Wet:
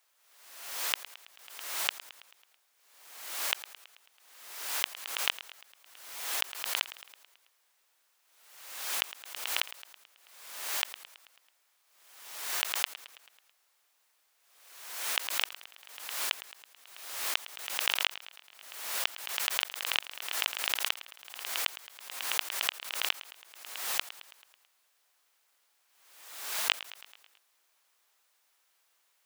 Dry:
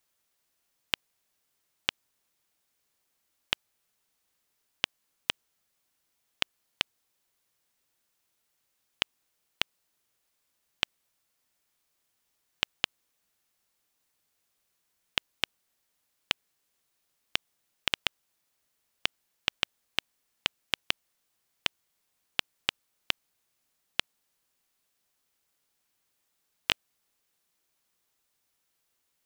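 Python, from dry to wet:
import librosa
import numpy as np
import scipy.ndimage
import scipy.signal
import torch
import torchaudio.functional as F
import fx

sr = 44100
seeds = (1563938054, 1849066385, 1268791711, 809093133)

p1 = scipy.signal.sosfilt(scipy.signal.butter(2, 680.0, 'highpass', fs=sr, output='sos'), x)
p2 = fx.high_shelf(p1, sr, hz=2900.0, db=-5.5)
p3 = fx.over_compress(p2, sr, threshold_db=-32.0, ratio=-0.5)
p4 = p3 + fx.echo_feedback(p3, sr, ms=109, feedback_pct=58, wet_db=-16.0, dry=0)
p5 = fx.pre_swell(p4, sr, db_per_s=56.0)
y = p5 * librosa.db_to_amplitude(5.0)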